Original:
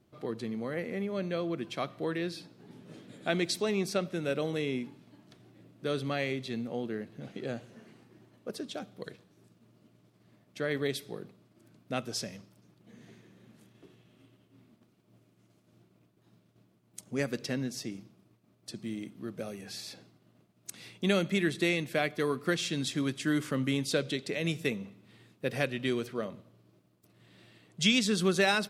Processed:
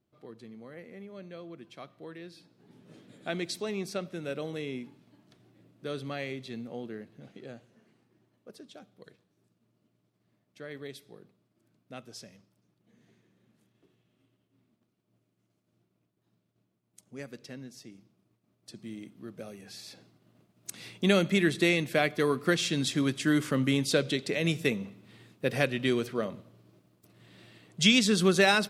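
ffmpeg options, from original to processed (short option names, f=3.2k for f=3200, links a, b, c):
-af "volume=10dB,afade=t=in:st=2.31:d=0.64:silence=0.421697,afade=t=out:st=6.84:d=0.86:silence=0.473151,afade=t=in:st=17.92:d=1.02:silence=0.473151,afade=t=in:st=19.78:d=1.11:silence=0.421697"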